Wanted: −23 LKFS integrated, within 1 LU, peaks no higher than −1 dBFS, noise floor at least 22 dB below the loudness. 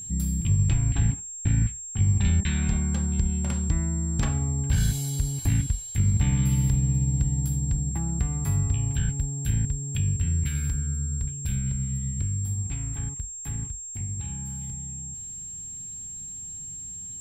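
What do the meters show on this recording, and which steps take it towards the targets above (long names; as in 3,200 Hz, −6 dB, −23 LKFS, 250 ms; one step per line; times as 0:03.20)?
crackle rate 17 per second; interfering tone 7,500 Hz; level of the tone −35 dBFS; integrated loudness −27.0 LKFS; sample peak −12.5 dBFS; target loudness −23.0 LKFS
→ click removal
notch filter 7,500 Hz, Q 30
level +4 dB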